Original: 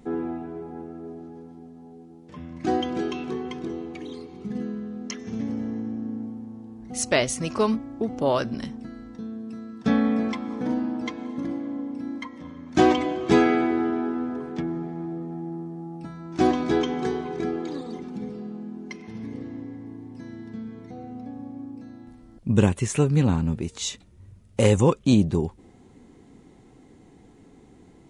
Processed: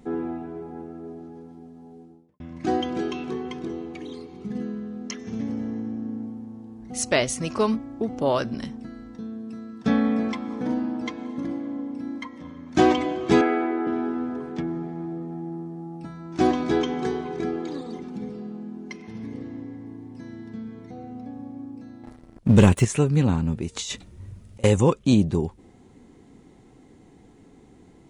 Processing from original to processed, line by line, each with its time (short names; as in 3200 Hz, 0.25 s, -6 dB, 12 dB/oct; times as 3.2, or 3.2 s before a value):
1.98–2.4 studio fade out
13.41–13.87 three-band isolator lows -20 dB, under 250 Hz, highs -14 dB, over 2600 Hz
22.03–22.85 sample leveller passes 2
23.76–24.64 negative-ratio compressor -35 dBFS